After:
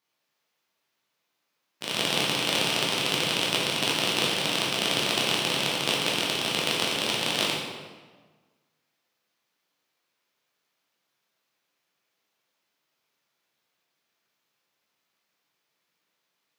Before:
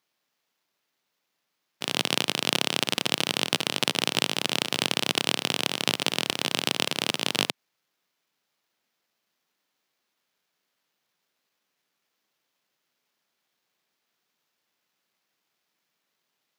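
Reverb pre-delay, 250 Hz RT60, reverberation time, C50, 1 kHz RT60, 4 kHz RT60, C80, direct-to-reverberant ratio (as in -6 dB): 10 ms, 1.6 s, 1.4 s, 1.5 dB, 1.4 s, 1.0 s, 3.5 dB, -4.5 dB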